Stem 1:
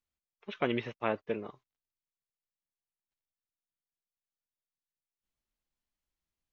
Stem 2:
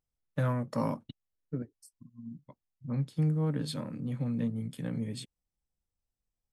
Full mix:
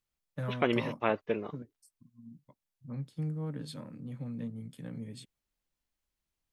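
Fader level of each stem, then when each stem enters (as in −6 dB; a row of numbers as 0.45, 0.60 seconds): +2.5, −7.0 decibels; 0.00, 0.00 seconds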